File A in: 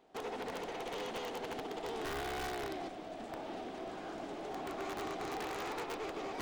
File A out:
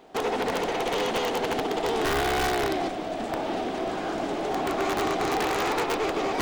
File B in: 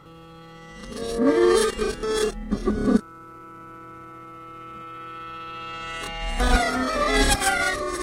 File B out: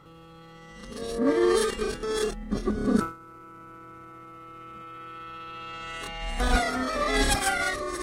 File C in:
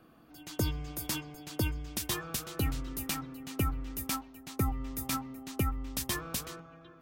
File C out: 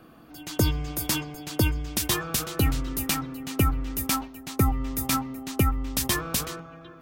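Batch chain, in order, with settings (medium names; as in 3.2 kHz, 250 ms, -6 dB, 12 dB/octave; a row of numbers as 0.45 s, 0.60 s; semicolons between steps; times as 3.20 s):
decay stretcher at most 140 dB/s; normalise loudness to -27 LUFS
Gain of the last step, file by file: +14.0 dB, -4.0 dB, +8.0 dB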